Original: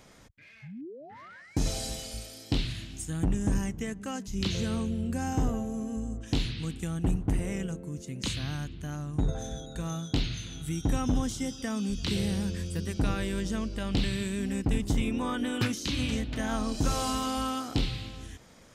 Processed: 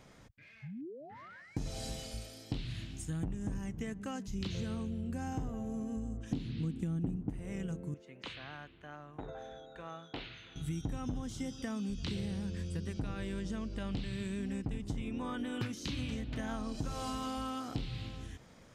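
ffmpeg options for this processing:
ffmpeg -i in.wav -filter_complex "[0:a]asettb=1/sr,asplit=3[link_01][link_02][link_03];[link_01]atrim=end=6.314[link_04];[link_02]atrim=start=6.31:end=7.3,asetpts=PTS-STARTPTS,afade=type=in:duration=0.004:curve=qsin,afade=type=out:start_time=0.986:duration=0.004:curve=qsin,equalizer=frequency=240:width_type=o:width=1.8:gain=13[link_05];[link_03]atrim=start=7.296[link_06];[link_04][link_05]acrossfade=duration=0.004:curve1=hsin:curve2=qsin[link_07];[link_07][link_06]acrossfade=duration=0.004:curve1=qsin:curve2=hsin,asettb=1/sr,asplit=3[link_08][link_09][link_10];[link_08]atrim=end=7.944[link_11];[link_09]atrim=start=7.94:end=10.56,asetpts=PTS-STARTPTS,afade=type=in:duration=0.004:curve=qsin,afade=type=out:start_time=2.616:duration=0.004:curve=qsin,acrossover=split=410 3300:gain=0.0891 1 0.0794[link_12][link_13][link_14];[link_12][link_13][link_14]amix=inputs=3:normalize=0[link_15];[link_10]atrim=start=10.556[link_16];[link_11][link_15]acrossfade=duration=0.004:curve1=hsin:curve2=qsin[link_17];[link_17][link_16]acrossfade=duration=0.004:curve1=qsin:curve2=hsin,asettb=1/sr,asplit=3[link_18][link_19][link_20];[link_18]atrim=end=11.944[link_21];[link_19]atrim=start=11.94:end=15.24,asetpts=PTS-STARTPTS,afade=type=in:duration=0.004:curve=qsin,afade=type=out:start_time=3.296:duration=0.004:curve=qsin,lowpass=11000[link_22];[link_20]atrim=start=15.236[link_23];[link_21][link_22]acrossfade=duration=0.004:curve1=hsin:curve2=qsin[link_24];[link_24][link_23]acrossfade=duration=0.004:curve1=qsin:curve2=hsin,highshelf=frequency=5200:gain=-7,acompressor=threshold=-32dB:ratio=6,equalizer=frequency=130:width=1.6:gain=3.5,volume=-3dB" out.wav

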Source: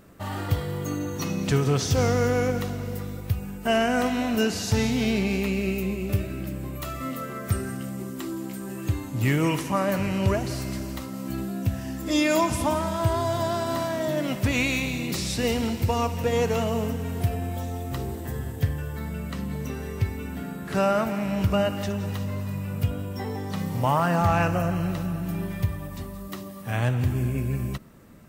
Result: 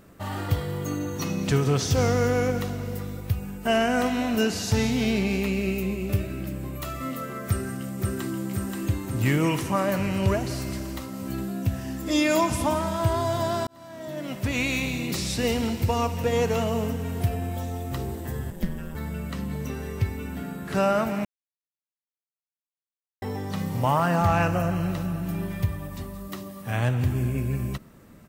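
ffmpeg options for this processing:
ffmpeg -i in.wav -filter_complex "[0:a]asplit=2[link_01][link_02];[link_02]afade=type=in:start_time=7.48:duration=0.01,afade=type=out:start_time=8.32:duration=0.01,aecho=0:1:530|1060|1590|2120|2650|3180|3710|4240|4770|5300|5830|6360:0.707946|0.495562|0.346893|0.242825|0.169978|0.118984|0.0832891|0.0583024|0.0408117|0.0285682|0.0199977|0.0139984[link_03];[link_01][link_03]amix=inputs=2:normalize=0,asettb=1/sr,asplit=3[link_04][link_05][link_06];[link_04]atrim=end=18.504[link_07];[link_05]atrim=start=18.5:end=18.95,asetpts=PTS-STARTPTS,afade=type=in:duration=0.004:curve=qsin,afade=type=out:start_time=0.446:duration=0.004:curve=qsin,aeval=exprs='val(0)*sin(2*PI*84*n/s)':channel_layout=same[link_08];[link_06]atrim=start=18.946[link_09];[link_07][link_08]acrossfade=duration=0.004:curve1=hsin:curve2=qsin[link_10];[link_10][link_09]acrossfade=duration=0.004:curve1=qsin:curve2=hsin,asplit=4[link_11][link_12][link_13][link_14];[link_11]atrim=end=13.67,asetpts=PTS-STARTPTS,afade=type=out:start_time=13.666:duration=0.004:curve=hsin[link_15];[link_12]atrim=start=13.67:end=21.25,asetpts=PTS-STARTPTS,afade=type=in:duration=1.17,afade=type=out:start_time=7.576:duration=0.004:curve=hsin[link_16];[link_13]atrim=start=21.25:end=23.22,asetpts=PTS-STARTPTS,volume=0[link_17];[link_14]atrim=start=23.22,asetpts=PTS-STARTPTS,afade=type=in:duration=0.004:curve=hsin[link_18];[link_15][link_16][link_17][link_18]concat=n=4:v=0:a=1" out.wav

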